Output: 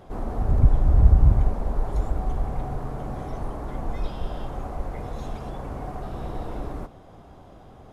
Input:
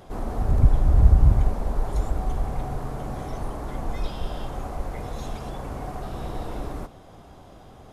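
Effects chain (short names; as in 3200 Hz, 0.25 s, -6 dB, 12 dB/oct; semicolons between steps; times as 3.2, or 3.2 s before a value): high shelf 2700 Hz -8 dB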